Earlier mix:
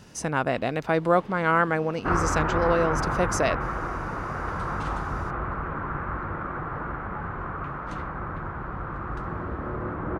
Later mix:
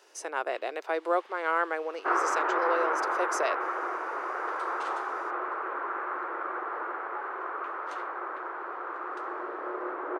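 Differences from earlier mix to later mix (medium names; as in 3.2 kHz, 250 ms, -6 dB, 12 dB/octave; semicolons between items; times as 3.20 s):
speech -5.0 dB; first sound: add high-pass 1.3 kHz; master: add elliptic high-pass 360 Hz, stop band 50 dB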